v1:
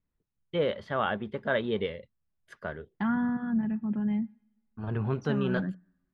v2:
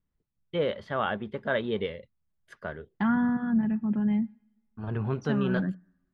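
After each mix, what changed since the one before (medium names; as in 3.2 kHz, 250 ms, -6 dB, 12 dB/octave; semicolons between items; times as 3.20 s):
second voice +3.0 dB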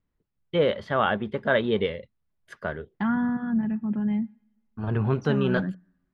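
first voice +5.5 dB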